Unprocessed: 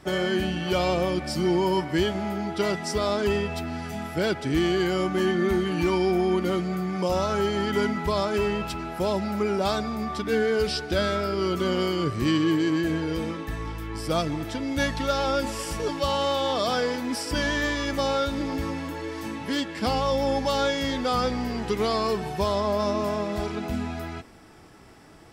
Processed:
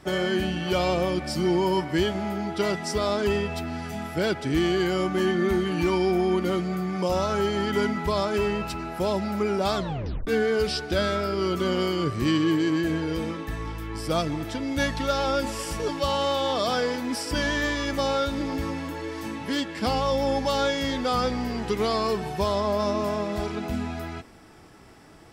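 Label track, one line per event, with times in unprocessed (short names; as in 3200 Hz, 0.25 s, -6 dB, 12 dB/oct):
8.510000	8.940000	notch 3300 Hz
9.750000	9.750000	tape stop 0.52 s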